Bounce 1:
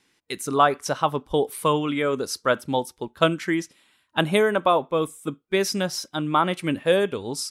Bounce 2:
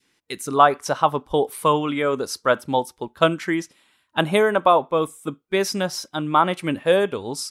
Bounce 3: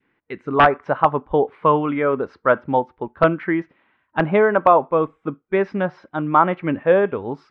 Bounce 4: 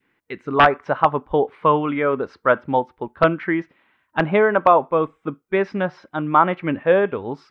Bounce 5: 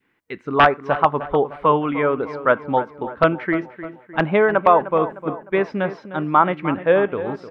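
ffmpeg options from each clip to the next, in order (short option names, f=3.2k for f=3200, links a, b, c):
-af "adynamicequalizer=threshold=0.0316:dfrequency=870:dqfactor=0.91:tfrequency=870:tqfactor=0.91:attack=5:release=100:ratio=0.375:range=2.5:mode=boostabove:tftype=bell"
-af "aeval=exprs='(mod(1.5*val(0)+1,2)-1)/1.5':c=same,lowpass=f=2.1k:w=0.5412,lowpass=f=2.1k:w=1.3066,volume=2.5dB"
-af "highshelf=f=3.2k:g=9,volume=-1dB"
-filter_complex "[0:a]asplit=2[a][b];[b]adelay=305,lowpass=f=2.3k:p=1,volume=-13dB,asplit=2[c][d];[d]adelay=305,lowpass=f=2.3k:p=1,volume=0.51,asplit=2[e][f];[f]adelay=305,lowpass=f=2.3k:p=1,volume=0.51,asplit=2[g][h];[h]adelay=305,lowpass=f=2.3k:p=1,volume=0.51,asplit=2[i][j];[j]adelay=305,lowpass=f=2.3k:p=1,volume=0.51[k];[a][c][e][g][i][k]amix=inputs=6:normalize=0"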